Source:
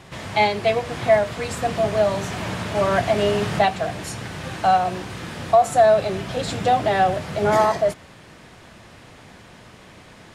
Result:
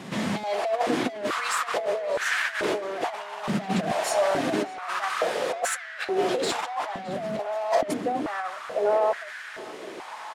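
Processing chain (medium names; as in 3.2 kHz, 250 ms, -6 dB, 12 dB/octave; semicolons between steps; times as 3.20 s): echo from a far wall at 240 m, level -10 dB; saturation -21 dBFS, distortion -7 dB; compressor with a negative ratio -29 dBFS, ratio -0.5; on a send: band-passed feedback delay 615 ms, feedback 76%, band-pass 1.7 kHz, level -15 dB; on the sum: step-sequenced high-pass 2.3 Hz 210–1600 Hz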